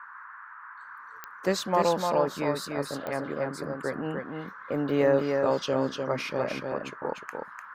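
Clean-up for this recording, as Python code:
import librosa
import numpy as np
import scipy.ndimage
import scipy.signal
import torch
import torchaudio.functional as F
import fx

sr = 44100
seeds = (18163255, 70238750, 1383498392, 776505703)

y = fx.fix_declick_ar(x, sr, threshold=10.0)
y = fx.noise_reduce(y, sr, print_start_s=0.05, print_end_s=0.55, reduce_db=27.0)
y = fx.fix_echo_inverse(y, sr, delay_ms=299, level_db=-4.5)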